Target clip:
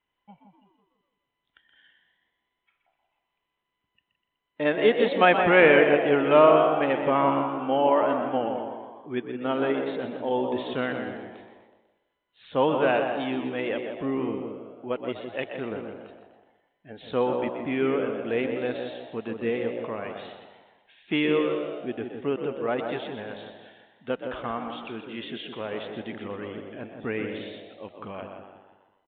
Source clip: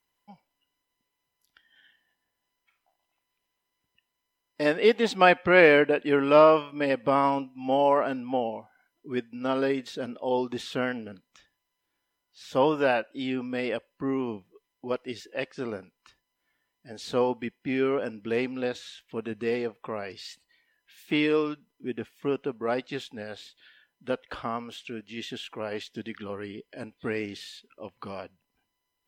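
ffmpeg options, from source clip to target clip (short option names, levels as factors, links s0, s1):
-filter_complex "[0:a]asplit=2[s0][s1];[s1]asplit=6[s2][s3][s4][s5][s6][s7];[s2]adelay=124,afreqshift=62,volume=0.335[s8];[s3]adelay=248,afreqshift=124,volume=0.184[s9];[s4]adelay=372,afreqshift=186,volume=0.101[s10];[s5]adelay=496,afreqshift=248,volume=0.0556[s11];[s6]adelay=620,afreqshift=310,volume=0.0305[s12];[s7]adelay=744,afreqshift=372,volume=0.0168[s13];[s8][s9][s10][s11][s12][s13]amix=inputs=6:normalize=0[s14];[s0][s14]amix=inputs=2:normalize=0,aresample=8000,aresample=44100,asplit=2[s15][s16];[s16]adelay=166,lowpass=f=1200:p=1,volume=0.531,asplit=2[s17][s18];[s18]adelay=166,lowpass=f=1200:p=1,volume=0.39,asplit=2[s19][s20];[s20]adelay=166,lowpass=f=1200:p=1,volume=0.39,asplit=2[s21][s22];[s22]adelay=166,lowpass=f=1200:p=1,volume=0.39,asplit=2[s23][s24];[s24]adelay=166,lowpass=f=1200:p=1,volume=0.39[s25];[s17][s19][s21][s23][s25]amix=inputs=5:normalize=0[s26];[s15][s26]amix=inputs=2:normalize=0"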